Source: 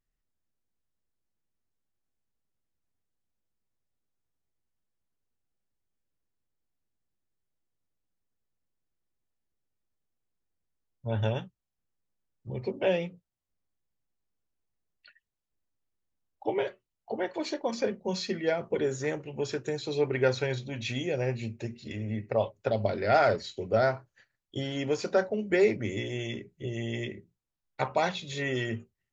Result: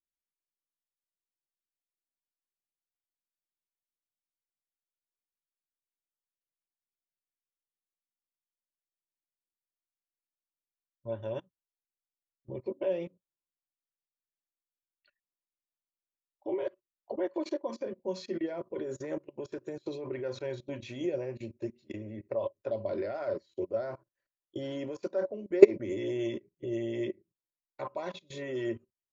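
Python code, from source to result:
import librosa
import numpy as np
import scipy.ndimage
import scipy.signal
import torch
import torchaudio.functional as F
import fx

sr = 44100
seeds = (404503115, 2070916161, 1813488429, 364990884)

y = fx.level_steps(x, sr, step_db=19)
y = fx.small_body(y, sr, hz=(350.0, 560.0, 1000.0), ring_ms=35, db=14)
y = fx.upward_expand(y, sr, threshold_db=-47.0, expansion=1.5)
y = y * 10.0 ** (3.5 / 20.0)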